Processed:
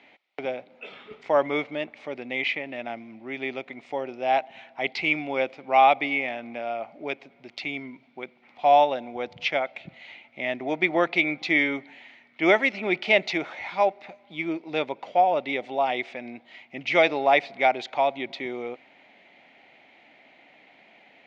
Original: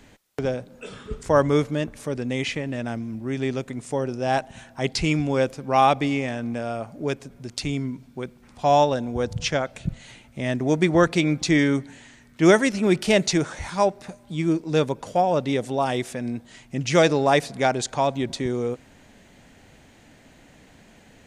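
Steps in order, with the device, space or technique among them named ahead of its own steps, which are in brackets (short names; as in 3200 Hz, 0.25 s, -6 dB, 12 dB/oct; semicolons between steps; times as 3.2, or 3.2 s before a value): phone earpiece (speaker cabinet 440–3600 Hz, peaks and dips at 460 Hz -6 dB, 740 Hz +4 dB, 1100 Hz -5 dB, 1600 Hz -8 dB, 2200 Hz +9 dB)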